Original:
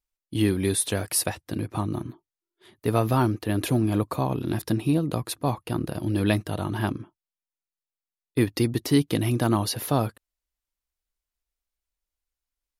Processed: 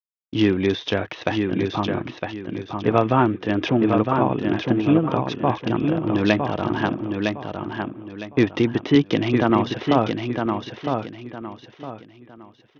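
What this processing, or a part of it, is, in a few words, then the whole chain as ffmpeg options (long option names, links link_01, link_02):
Bluetooth headset: -filter_complex "[0:a]agate=range=-33dB:threshold=-40dB:ratio=3:detection=peak,asettb=1/sr,asplit=3[link_01][link_02][link_03];[link_01]atrim=end=8.954[link_04];[link_02]atrim=start=8.95:end=9.5,asetpts=PTS-STARTPTS,afade=type=in:duration=0.004:curve=qsin,afade=type=out:start_time=0.546:duration=0.004:curve=qsin,highpass=frequency=60:width=0.5412,highpass=frequency=60:width=1.3066[link_05];[link_03]atrim=start=9.496[link_06];[link_04][link_05]acrossfade=duration=0.004:curve1=hsin:curve2=qsin[link_07];[link_07][link_06]acrossfade=duration=0.004:curve1=qsin:curve2=hsin,adynamicequalizer=threshold=0.00794:dfrequency=110:dqfactor=4.9:tfrequency=110:tqfactor=4.9:attack=5:release=100:ratio=0.375:range=3:mode=cutabove:tftype=bell,highpass=frequency=200:poles=1,aecho=1:1:959|1918|2877|3836:0.562|0.169|0.0506|0.0152,aresample=8000,aresample=44100,volume=6.5dB" -ar 48000 -c:a sbc -b:a 64k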